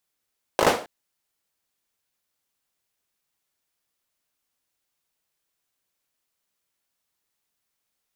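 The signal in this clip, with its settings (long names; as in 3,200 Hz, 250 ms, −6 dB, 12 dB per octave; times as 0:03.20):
synth clap length 0.27 s, bursts 5, apart 19 ms, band 540 Hz, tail 0.37 s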